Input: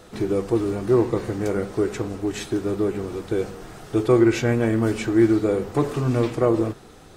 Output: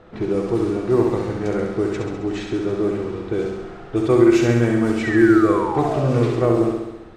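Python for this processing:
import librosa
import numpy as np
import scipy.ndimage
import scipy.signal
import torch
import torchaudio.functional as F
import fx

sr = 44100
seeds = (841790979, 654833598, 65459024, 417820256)

y = fx.env_lowpass(x, sr, base_hz=2100.0, full_db=-14.0)
y = fx.spec_paint(y, sr, seeds[0], shape='fall', start_s=5.03, length_s=1.33, low_hz=370.0, high_hz=2000.0, level_db=-28.0)
y = fx.room_flutter(y, sr, wall_m=11.5, rt60_s=0.99)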